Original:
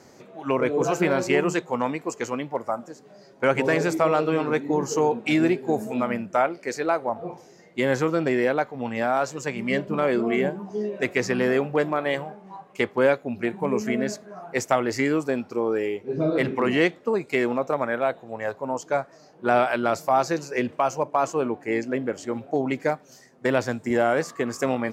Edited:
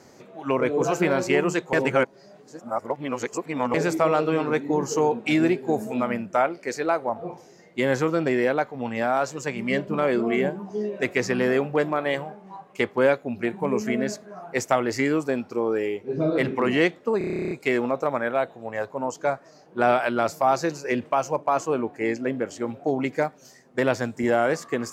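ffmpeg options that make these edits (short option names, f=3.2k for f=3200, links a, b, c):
-filter_complex "[0:a]asplit=14[a][b][c][d][e][f][g][h][i][j][k][l][m][n];[a]atrim=end=1.732[o];[b]atrim=start=1.728:end=3.742,asetpts=PTS-STARTPTS,areverse[p];[c]atrim=start=3.738:end=17.212[q];[d]atrim=start=17.178:end=17.212[r];[e]atrim=start=17.178:end=17.212[s];[f]atrim=start=17.178:end=17.212[t];[g]atrim=start=17.178:end=17.212[u];[h]atrim=start=17.178:end=17.212[v];[i]atrim=start=17.178:end=17.212[w];[j]atrim=start=17.178:end=17.212[x];[k]atrim=start=17.178:end=17.212[y];[l]atrim=start=17.178:end=17.212[z];[m]atrim=start=17.178:end=17.212[aa];[n]atrim=start=17.178[ab];[o][p]acrossfade=d=0.004:c1=hsin:c2=hsin[ac];[ac][q]acrossfade=d=0.004:c1=hsin:c2=hsin[ad];[ad][r]acrossfade=d=0.004:c1=hsin:c2=hsin[ae];[ae][s]acrossfade=d=0.004:c1=hsin:c2=hsin[af];[af][t]acrossfade=d=0.004:c1=hsin:c2=hsin[ag];[ag][u]acrossfade=d=0.004:c1=hsin:c2=hsin[ah];[ah][v]acrossfade=d=0.004:c1=hsin:c2=hsin[ai];[ai][w]acrossfade=d=0.004:c1=hsin:c2=hsin[aj];[aj][x]acrossfade=d=0.004:c1=hsin:c2=hsin[ak];[ak][y]acrossfade=d=0.004:c1=hsin:c2=hsin[al];[al][z]acrossfade=d=0.004:c1=hsin:c2=hsin[am];[am][aa]acrossfade=d=0.004:c1=hsin:c2=hsin[an];[an][ab]acrossfade=d=0.004:c1=hsin:c2=hsin"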